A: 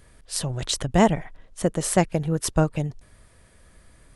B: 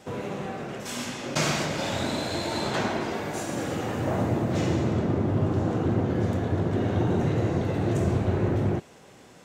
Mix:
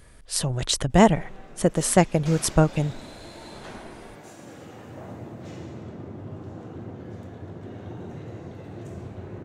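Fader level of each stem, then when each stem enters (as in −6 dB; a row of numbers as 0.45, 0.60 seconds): +2.0, −13.5 decibels; 0.00, 0.90 seconds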